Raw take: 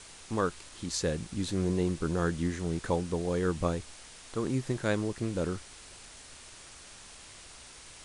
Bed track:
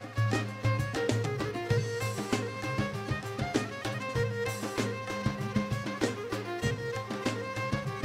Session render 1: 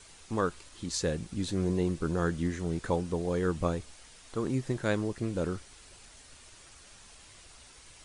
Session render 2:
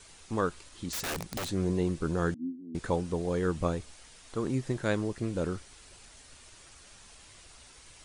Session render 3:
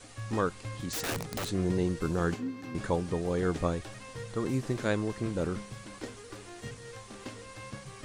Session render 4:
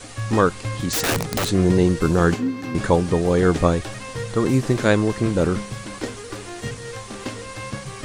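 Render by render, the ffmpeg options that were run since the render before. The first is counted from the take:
-af "afftdn=nr=6:nf=-51"
-filter_complex "[0:a]asettb=1/sr,asplit=3[s0][s1][s2];[s0]atrim=end=0.924[s3];[s1]atrim=start=0.92:end=1.5,asetpts=PTS-STARTPTS,afade=t=in:d=0.004:c=qsin,afade=t=out:st=0.576:d=0.004:c=qsin,aeval=exprs='(mod(28.2*val(0)+1,2)-1)/28.2':c=same[s4];[s2]atrim=start=1.496[s5];[s3][s4]acrossfade=d=0.004:c1=hsin:c2=qsin[s6];[s6][s5]acrossfade=d=0.004:c1=qsin:c2=hsin,asettb=1/sr,asplit=3[s7][s8][s9];[s7]atrim=end=2.344[s10];[s8]atrim=start=2.34:end=2.75,asetpts=PTS-STARTPTS,afade=t=in:d=0.004:c=qsin,afade=t=out:st=0.406:d=0.004:c=qsin,asuperpass=centerf=260:order=4:qfactor=4[s11];[s9]atrim=start=2.746[s12];[s10][s11]acrossfade=d=0.004:c1=hsin:c2=qsin[s13];[s13][s12]acrossfade=d=0.004:c1=qsin:c2=hsin"
-filter_complex "[1:a]volume=0.266[s0];[0:a][s0]amix=inputs=2:normalize=0"
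-af "volume=3.98"

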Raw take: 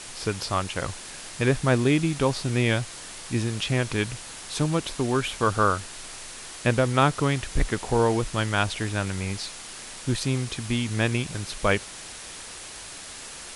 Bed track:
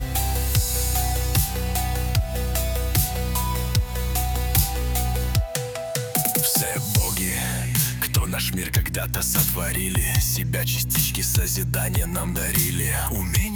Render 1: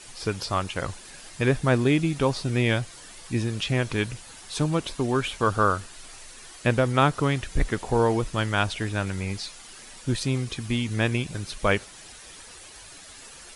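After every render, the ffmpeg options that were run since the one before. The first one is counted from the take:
-af "afftdn=nr=9:nf=-41"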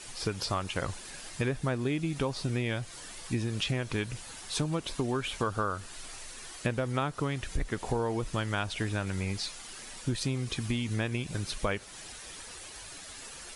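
-af "acompressor=threshold=0.0447:ratio=6"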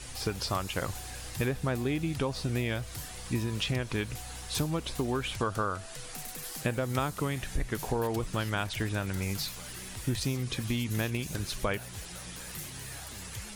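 -filter_complex "[1:a]volume=0.0841[s0];[0:a][s0]amix=inputs=2:normalize=0"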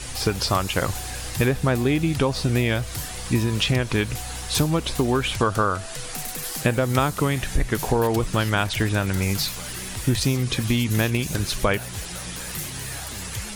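-af "volume=2.99"

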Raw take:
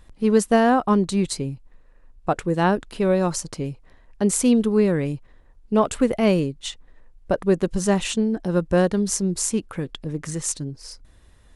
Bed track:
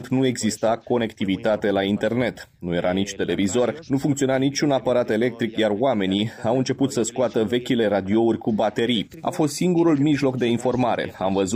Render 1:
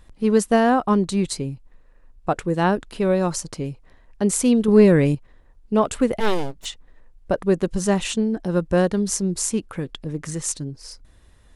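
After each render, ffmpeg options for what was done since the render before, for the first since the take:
-filter_complex "[0:a]asettb=1/sr,asplit=3[s0][s1][s2];[s0]atrim=end=4.684[s3];[s1]atrim=start=4.68:end=5.15,asetpts=PTS-STARTPTS,afade=t=in:d=0.004:c=qsin,afade=t=out:st=0.466:d=0.004:c=qsin,acontrast=82[s4];[s2]atrim=start=5.146[s5];[s3][s4]acrossfade=d=0.004:c1=hsin:c2=qsin[s6];[s6][s5]acrossfade=d=0.004:c1=qsin:c2=hsin,asplit=3[s7][s8][s9];[s7]afade=t=out:st=6.19:d=0.02[s10];[s8]aeval=exprs='abs(val(0))':c=same,afade=t=in:st=6.19:d=0.02,afade=t=out:st=6.64:d=0.02[s11];[s9]afade=t=in:st=6.64:d=0.02[s12];[s10][s11][s12]amix=inputs=3:normalize=0"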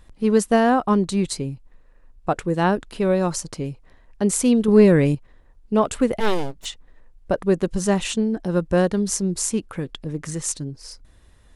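-af anull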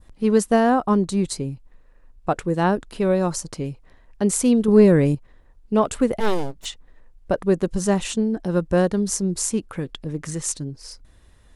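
-af "adynamicequalizer=threshold=0.01:dfrequency=2700:dqfactor=0.88:tfrequency=2700:tqfactor=0.88:attack=5:release=100:ratio=0.375:range=3:mode=cutabove:tftype=bell"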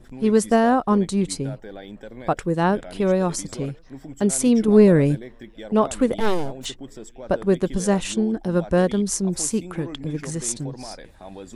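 -filter_complex "[1:a]volume=0.133[s0];[0:a][s0]amix=inputs=2:normalize=0"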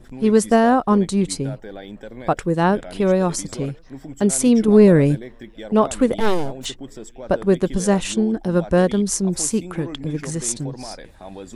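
-af "volume=1.33,alimiter=limit=0.708:level=0:latency=1"

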